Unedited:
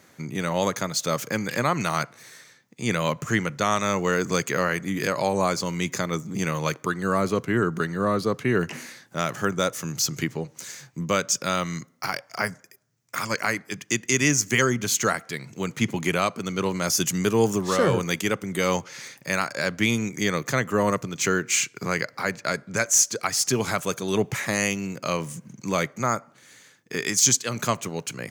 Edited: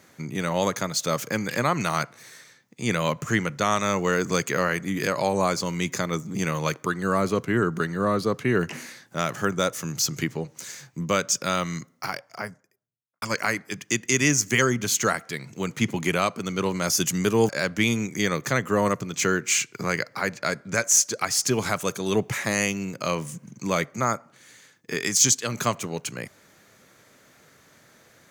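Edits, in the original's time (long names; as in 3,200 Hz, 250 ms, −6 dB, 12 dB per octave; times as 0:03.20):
0:11.77–0:13.22: fade out and dull
0:17.49–0:19.51: remove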